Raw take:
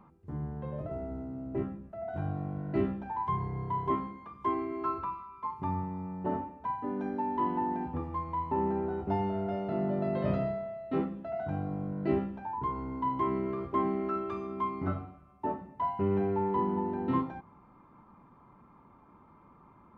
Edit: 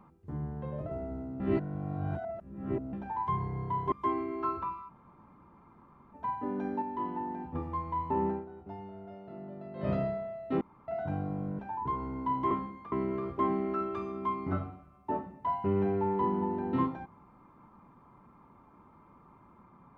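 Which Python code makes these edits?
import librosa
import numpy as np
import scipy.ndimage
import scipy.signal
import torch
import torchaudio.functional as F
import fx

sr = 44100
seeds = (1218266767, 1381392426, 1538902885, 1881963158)

y = fx.edit(x, sr, fx.reverse_span(start_s=1.4, length_s=1.53),
    fx.move(start_s=3.92, length_s=0.41, to_s=13.27),
    fx.room_tone_fill(start_s=5.3, length_s=1.25, crossfade_s=0.02),
    fx.clip_gain(start_s=7.23, length_s=0.73, db=-5.0),
    fx.fade_down_up(start_s=8.69, length_s=1.64, db=-13.5, fade_s=0.17),
    fx.room_tone_fill(start_s=11.02, length_s=0.27),
    fx.cut(start_s=12.0, length_s=0.35), tone=tone)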